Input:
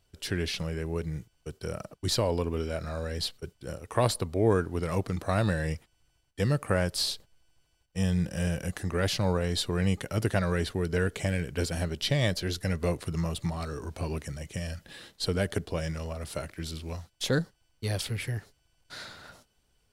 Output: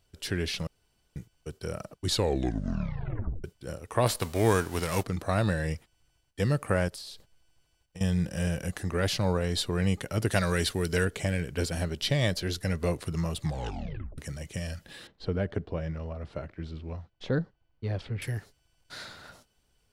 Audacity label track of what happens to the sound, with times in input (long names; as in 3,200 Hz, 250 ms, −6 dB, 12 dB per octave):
0.670000	1.160000	fill with room tone
2.060000	2.060000	tape stop 1.38 s
4.060000	5.020000	spectral envelope flattened exponent 0.6
6.880000	8.010000	downward compressor 12 to 1, threshold −39 dBFS
10.310000	11.050000	high-shelf EQ 2,600 Hz +11 dB
13.420000	13.420000	tape stop 0.76 s
15.070000	18.220000	head-to-tape spacing loss at 10 kHz 34 dB